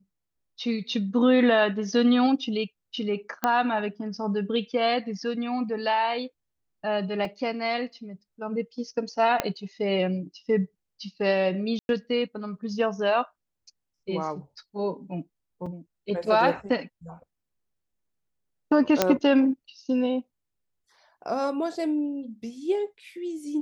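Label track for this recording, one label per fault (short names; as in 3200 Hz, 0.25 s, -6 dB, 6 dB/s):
3.440000	3.440000	pop -10 dBFS
7.250000	7.250000	gap 2.1 ms
9.400000	9.400000	pop -8 dBFS
11.790000	11.890000	gap 0.101 s
15.660000	15.660000	gap 4.7 ms
19.020000	19.020000	pop -4 dBFS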